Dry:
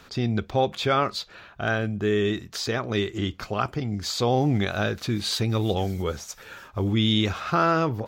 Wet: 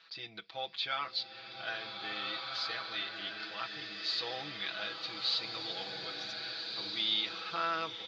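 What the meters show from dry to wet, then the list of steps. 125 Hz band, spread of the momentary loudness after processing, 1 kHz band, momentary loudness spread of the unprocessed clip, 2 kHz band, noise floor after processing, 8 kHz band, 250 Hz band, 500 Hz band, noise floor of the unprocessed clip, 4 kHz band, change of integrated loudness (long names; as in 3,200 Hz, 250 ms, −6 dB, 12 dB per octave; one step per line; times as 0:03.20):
−32.0 dB, 8 LU, −12.0 dB, 9 LU, −7.5 dB, −51 dBFS, −19.0 dB, −25.0 dB, −20.0 dB, −50 dBFS, −3.0 dB, −10.5 dB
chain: elliptic low-pass filter 4,400 Hz, stop band 70 dB
first difference
comb filter 6.1 ms, depth 91%
slow-attack reverb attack 1,680 ms, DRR 2 dB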